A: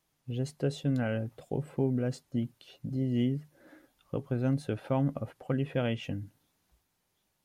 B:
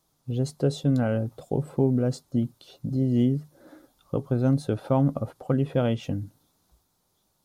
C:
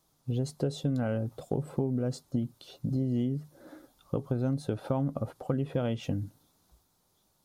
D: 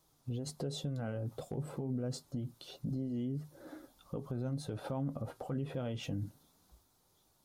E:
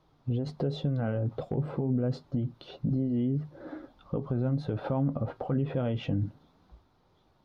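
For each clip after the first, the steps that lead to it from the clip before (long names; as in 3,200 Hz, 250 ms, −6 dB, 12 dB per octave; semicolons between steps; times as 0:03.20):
flat-topped bell 2,200 Hz −9 dB 1.1 octaves; level +6.5 dB
downward compressor 6 to 1, threshold −26 dBFS, peak gain reduction 9.5 dB
hard clipping −18 dBFS, distortion −41 dB; brickwall limiter −29.5 dBFS, peak gain reduction 11.5 dB; flanger 0.28 Hz, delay 2 ms, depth 7.1 ms, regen −67%; level +4 dB
high-frequency loss of the air 310 metres; level +9 dB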